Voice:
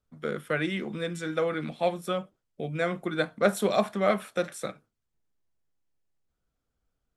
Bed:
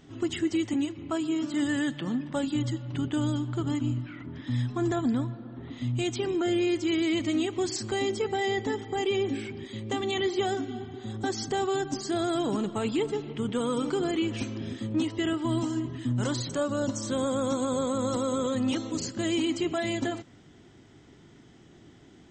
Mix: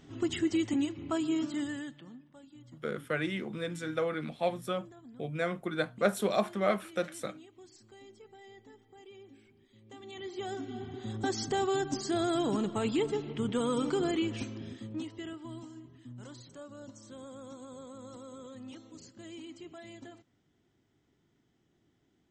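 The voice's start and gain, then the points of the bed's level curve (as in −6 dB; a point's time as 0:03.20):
2.60 s, −4.0 dB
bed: 0:01.41 −2 dB
0:02.34 −25.5 dB
0:09.67 −25.5 dB
0:10.88 −2 dB
0:14.10 −2 dB
0:15.80 −19 dB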